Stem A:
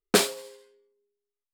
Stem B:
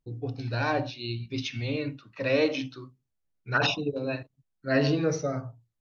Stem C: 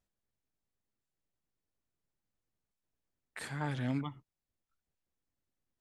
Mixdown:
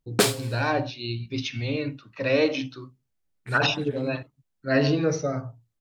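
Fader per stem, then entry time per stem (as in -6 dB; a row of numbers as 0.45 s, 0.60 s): 0.0 dB, +2.5 dB, -4.0 dB; 0.05 s, 0.00 s, 0.10 s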